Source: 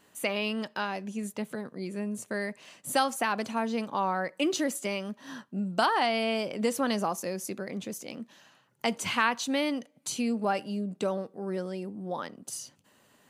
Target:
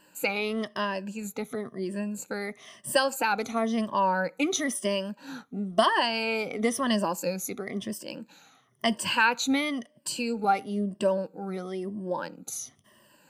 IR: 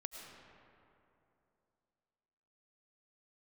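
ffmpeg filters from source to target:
-af "afftfilt=real='re*pow(10,15/40*sin(2*PI*(1.3*log(max(b,1)*sr/1024/100)/log(2)-(-0.99)*(pts-256)/sr)))':imag='im*pow(10,15/40*sin(2*PI*(1.3*log(max(b,1)*sr/1024/100)/log(2)-(-0.99)*(pts-256)/sr)))':win_size=1024:overlap=0.75"

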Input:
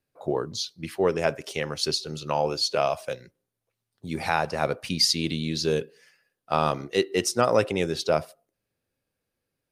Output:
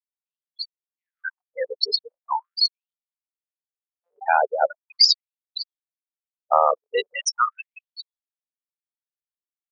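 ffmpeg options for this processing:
-af "afftfilt=real='re*gte(hypot(re,im),0.141)':imag='im*gte(hypot(re,im),0.141)':win_size=1024:overlap=0.75,afftfilt=real='re*gte(b*sr/1024,390*pow(3400/390,0.5+0.5*sin(2*PI*0.4*pts/sr)))':imag='im*gte(b*sr/1024,390*pow(3400/390,0.5+0.5*sin(2*PI*0.4*pts/sr)))':win_size=1024:overlap=0.75,volume=7.5dB"

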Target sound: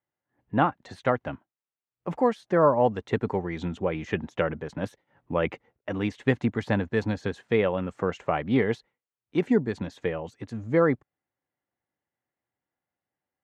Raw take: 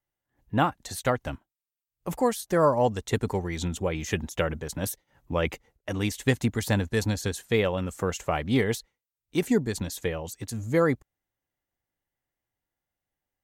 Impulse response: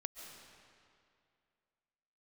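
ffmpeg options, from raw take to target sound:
-af "highpass=130,lowpass=2.2k,volume=1.5dB"

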